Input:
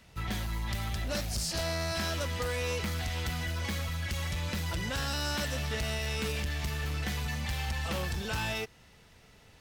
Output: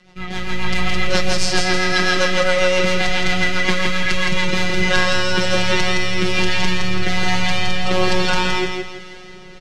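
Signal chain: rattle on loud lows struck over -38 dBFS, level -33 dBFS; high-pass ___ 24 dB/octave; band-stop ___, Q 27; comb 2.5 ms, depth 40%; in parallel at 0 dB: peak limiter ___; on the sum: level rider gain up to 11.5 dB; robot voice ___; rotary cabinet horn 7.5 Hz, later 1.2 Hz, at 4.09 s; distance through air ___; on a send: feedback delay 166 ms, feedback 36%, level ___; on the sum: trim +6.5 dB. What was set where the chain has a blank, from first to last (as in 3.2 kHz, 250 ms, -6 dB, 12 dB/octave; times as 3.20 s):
51 Hz, 2.5 kHz, -30.5 dBFS, 183 Hz, 100 m, -4 dB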